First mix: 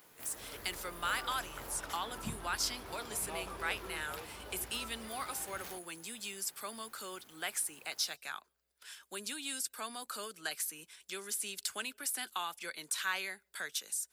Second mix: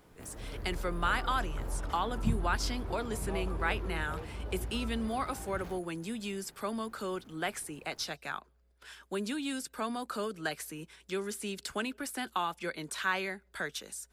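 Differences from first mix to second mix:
speech +6.5 dB; master: add tilt -4 dB/oct

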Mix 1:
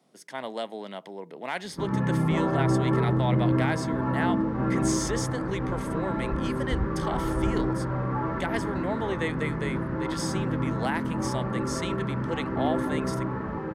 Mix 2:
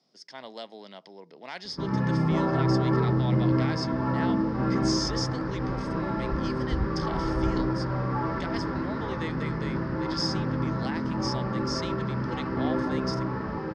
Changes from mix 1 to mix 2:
speech -8.0 dB; master: add synth low-pass 5100 Hz, resonance Q 8.1

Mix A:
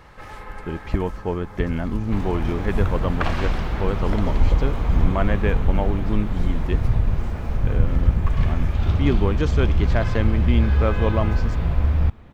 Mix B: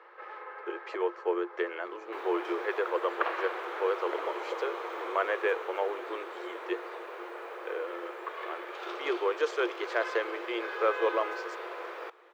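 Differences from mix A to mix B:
first sound: add air absorption 330 m; master: add rippled Chebyshev high-pass 340 Hz, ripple 6 dB

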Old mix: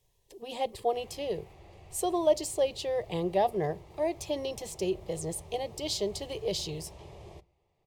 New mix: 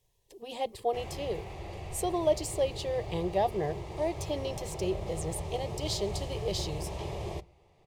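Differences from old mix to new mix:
speech: send -10.0 dB; background +11.5 dB

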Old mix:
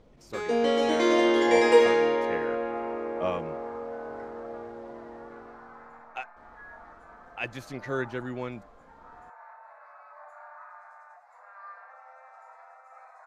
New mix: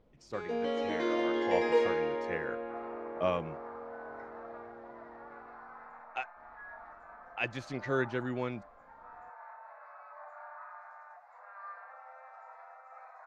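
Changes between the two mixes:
speech: remove LPF 3600 Hz 6 dB/oct; first sound -8.5 dB; master: add air absorption 130 m

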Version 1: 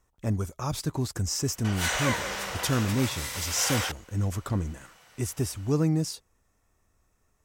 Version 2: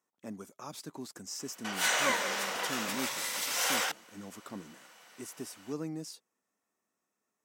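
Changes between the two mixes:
speech -10.0 dB; master: add Chebyshev high-pass 210 Hz, order 3

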